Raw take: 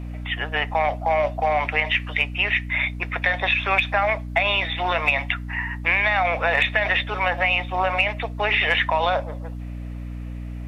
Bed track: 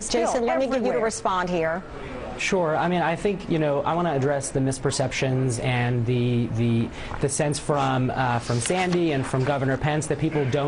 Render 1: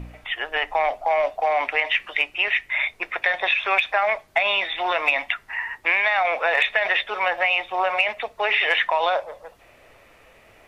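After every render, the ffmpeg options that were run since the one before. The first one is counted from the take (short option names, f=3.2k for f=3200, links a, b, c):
-af "bandreject=f=60:t=h:w=4,bandreject=f=120:t=h:w=4,bandreject=f=180:t=h:w=4,bandreject=f=240:t=h:w=4,bandreject=f=300:t=h:w=4"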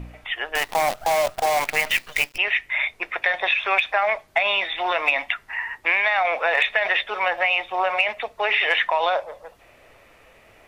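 -filter_complex "[0:a]asettb=1/sr,asplit=3[a][b][c];[a]atrim=end=0.554[d];[b]atrim=start=0.55:end=2.38,asetpts=PTS-STARTPTS,afade=t=in:d=0.004:c=qsin,afade=t=out:st=1.826:d=0.004:c=qsin,acrusher=bits=5:dc=4:mix=0:aa=0.000001[e];[c]atrim=start=2.376[f];[d][e]acrossfade=d=0.004:c1=hsin:c2=qsin[g];[g][f]acrossfade=d=0.004:c1=qsin:c2=hsin"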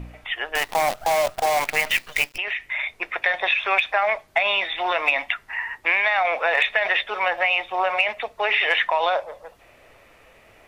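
-filter_complex "[0:a]asettb=1/sr,asplit=3[a][b][c];[a]atrim=end=2.294[d];[b]atrim=start=2.29:end=2.95,asetpts=PTS-STARTPTS,afade=t=in:d=0.004:c=qsin,afade=t=out:st=0.656:d=0.004:c=qsin,acompressor=threshold=-22dB:ratio=6:attack=3.2:release=140:knee=1:detection=peak[e];[c]atrim=start=2.946[f];[d][e]acrossfade=d=0.004:c1=hsin:c2=qsin[g];[g][f]acrossfade=d=0.004:c1=qsin:c2=hsin"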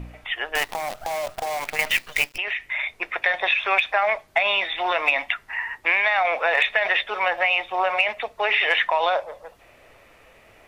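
-filter_complex "[0:a]asettb=1/sr,asplit=3[a][b][c];[a]atrim=end=0.724[d];[b]atrim=start=0.72:end=1.79,asetpts=PTS-STARTPTS,afade=t=in:d=0.004:c=qsin,afade=t=out:st=1.066:d=0.004:c=qsin,acompressor=threshold=-24dB:ratio=5:attack=3.2:release=140:knee=1:detection=peak[e];[c]atrim=start=1.786[f];[d][e]acrossfade=d=0.004:c1=hsin:c2=qsin[g];[g][f]acrossfade=d=0.004:c1=qsin:c2=hsin"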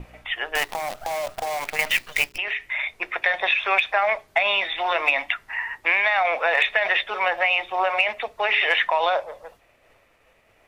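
-af "bandreject=f=60:t=h:w=6,bandreject=f=120:t=h:w=6,bandreject=f=180:t=h:w=6,bandreject=f=240:t=h:w=6,bandreject=f=300:t=h:w=6,bandreject=f=360:t=h:w=6,bandreject=f=420:t=h:w=6,agate=range=-33dB:threshold=-45dB:ratio=3:detection=peak"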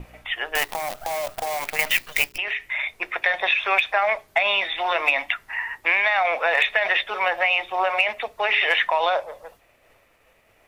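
-af "highshelf=f=11k:g=9"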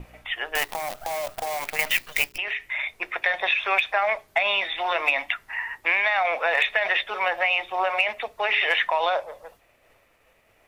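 -af "volume=-2dB"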